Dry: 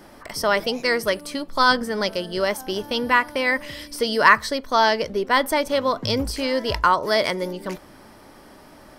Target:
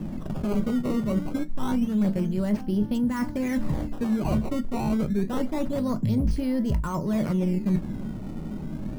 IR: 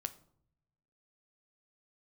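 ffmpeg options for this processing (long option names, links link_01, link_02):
-filter_complex "[0:a]acrossover=split=850|5100[link_01][link_02][link_03];[link_03]alimiter=level_in=4.5dB:limit=-24dB:level=0:latency=1,volume=-4.5dB[link_04];[link_01][link_02][link_04]amix=inputs=3:normalize=0,lowshelf=frequency=310:width_type=q:width=1.5:gain=9.5,acrusher=samples=15:mix=1:aa=0.000001:lfo=1:lforange=24:lforate=0.27,acontrast=83[link_05];[1:a]atrim=start_sample=2205,atrim=end_sample=3528,asetrate=70560,aresample=44100[link_06];[link_05][link_06]afir=irnorm=-1:irlink=0,areverse,acompressor=threshold=-28dB:ratio=6,areverse,tiltshelf=frequency=690:gain=8"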